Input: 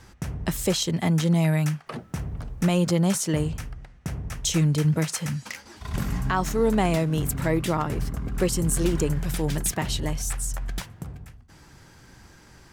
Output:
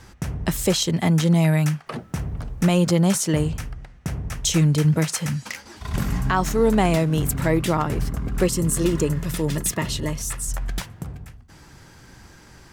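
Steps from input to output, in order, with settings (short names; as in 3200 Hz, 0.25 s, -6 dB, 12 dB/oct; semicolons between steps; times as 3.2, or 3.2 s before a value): 8.47–10.48 notch comb 770 Hz; gain +3.5 dB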